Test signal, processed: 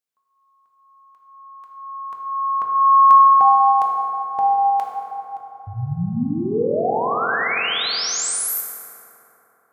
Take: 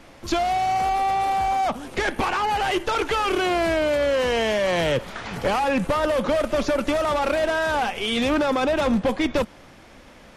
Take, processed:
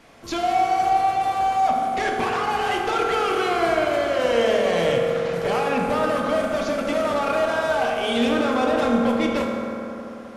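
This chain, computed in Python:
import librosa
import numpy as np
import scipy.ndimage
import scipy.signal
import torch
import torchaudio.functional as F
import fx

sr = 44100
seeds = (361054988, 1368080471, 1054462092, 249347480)

y = fx.low_shelf(x, sr, hz=87.0, db=-9.0)
y = fx.rev_fdn(y, sr, rt60_s=3.5, lf_ratio=1.0, hf_ratio=0.4, size_ms=13.0, drr_db=-2.0)
y = F.gain(torch.from_numpy(y), -3.5).numpy()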